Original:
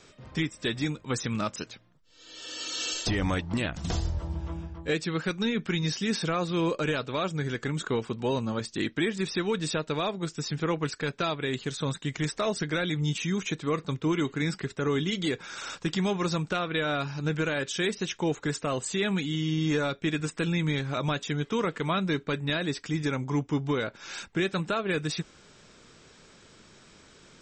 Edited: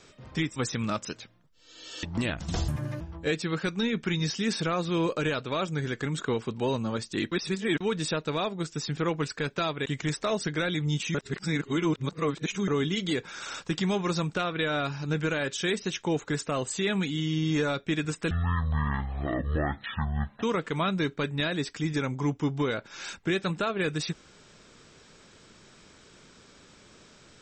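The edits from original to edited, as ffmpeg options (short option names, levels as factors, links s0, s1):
-filter_complex "[0:a]asplit=12[s0][s1][s2][s3][s4][s5][s6][s7][s8][s9][s10][s11];[s0]atrim=end=0.562[s12];[s1]atrim=start=1.068:end=2.542[s13];[s2]atrim=start=3.388:end=4.044[s14];[s3]atrim=start=4.04:end=4.63,asetpts=PTS-STARTPTS,asetrate=79821,aresample=44100,atrim=end_sample=14375,asetpts=PTS-STARTPTS[s15];[s4]atrim=start=4.626:end=8.942[s16];[s5]atrim=start=8.938:end=9.432,asetpts=PTS-STARTPTS,areverse[s17];[s6]atrim=start=9.428:end=11.482[s18];[s7]atrim=start=12.008:end=13.302[s19];[s8]atrim=start=13.298:end=14.832,asetpts=PTS-STARTPTS,areverse[s20];[s9]atrim=start=14.828:end=20.464[s21];[s10]atrim=start=20.46:end=21.52,asetpts=PTS-STARTPTS,asetrate=22050,aresample=44100[s22];[s11]atrim=start=21.516[s23];[s12][s13]acrossfade=d=0.004:c1=hsin:c2=hsin[s24];[s24][s14]acrossfade=d=0.004:c1=hsin:c2=hsin[s25];[s25][s15]acrossfade=d=0.004:c1=hsin:c2=hsin[s26];[s26][s16]acrossfade=d=0.004:c1=hsin:c2=hsin[s27];[s27][s17]acrossfade=d=0.004:c1=hsin:c2=hsin[s28];[s28][s18]acrossfade=d=0.004:c1=hsin:c2=hsin[s29];[s29][s19]acrossfade=d=0.004:c1=hsin:c2=hsin[s30];[s30][s20]acrossfade=d=0.004:c1=hsin:c2=hsin[s31];[s31][s21]acrossfade=d=0.004:c1=hsin:c2=hsin[s32];[s32][s22]acrossfade=d=0.004:c1=hsin:c2=hsin[s33];[s33][s23]acrossfade=d=0.004:c1=hsin:c2=hsin"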